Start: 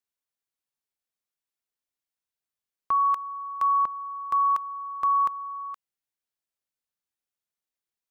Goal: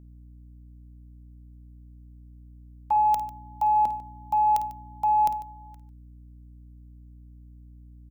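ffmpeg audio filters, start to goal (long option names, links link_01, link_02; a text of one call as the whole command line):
ffmpeg -i in.wav -filter_complex "[0:a]asuperstop=centerf=1400:order=4:qfactor=4.6,bandreject=frequency=424.2:width_type=h:width=4,bandreject=frequency=848.4:width_type=h:width=4,bandreject=frequency=1272.6:width_type=h:width=4,bandreject=frequency=1696.8:width_type=h:width=4,bandreject=frequency=2121:width_type=h:width=4,bandreject=frequency=2545.2:width_type=h:width=4,bandreject=frequency=2969.4:width_type=h:width=4,afreqshift=-270,crystalizer=i=5.5:c=0,agate=range=-16dB:threshold=-30dB:ratio=16:detection=peak,aeval=exprs='val(0)+0.00447*(sin(2*PI*60*n/s)+sin(2*PI*2*60*n/s)/2+sin(2*PI*3*60*n/s)/3+sin(2*PI*4*60*n/s)/4+sin(2*PI*5*60*n/s)/5)':channel_layout=same,acontrast=71,asettb=1/sr,asplit=3[link_01][link_02][link_03];[link_01]atrim=end=2.964[link_04];[link_02]atrim=start=2.96:end=5.34,asetpts=PTS-STARTPTS,afade=type=in:duration=0.004:curve=qsin,afade=type=out:start_time=2.376:duration=0.004:curve=qsin,equalizer=frequency=100:width_type=o:width=0.67:gain=6,equalizer=frequency=250:width_type=o:width=0.67:gain=7,equalizer=frequency=1600:width_type=o:width=0.67:gain=-9[link_05];[link_03]atrim=start=5.336[link_06];[link_04][link_05]acrossfade=duration=0.004:curve1=hsin:curve2=qsin[link_07];[link_07][link_06]acrossfade=duration=0.004:curve1=qsin:curve2=hsin,aecho=1:1:52|147:0.237|0.141,volume=-7dB" out.wav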